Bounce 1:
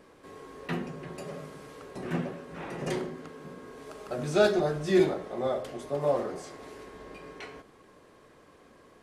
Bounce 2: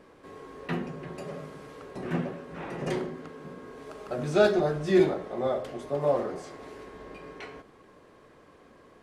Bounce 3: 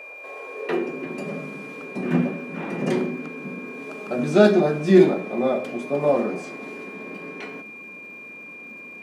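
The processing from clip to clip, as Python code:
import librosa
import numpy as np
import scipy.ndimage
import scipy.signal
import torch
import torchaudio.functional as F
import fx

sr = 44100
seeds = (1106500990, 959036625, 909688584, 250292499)

y1 = fx.high_shelf(x, sr, hz=4800.0, db=-7.0)
y1 = y1 * librosa.db_to_amplitude(1.5)
y2 = fx.filter_sweep_highpass(y1, sr, from_hz=600.0, to_hz=210.0, start_s=0.4, end_s=1.25, q=3.3)
y2 = fx.dmg_crackle(y2, sr, seeds[0], per_s=450.0, level_db=-57.0)
y2 = y2 + 10.0 ** (-42.0 / 20.0) * np.sin(2.0 * np.pi * 2400.0 * np.arange(len(y2)) / sr)
y2 = y2 * librosa.db_to_amplitude(4.0)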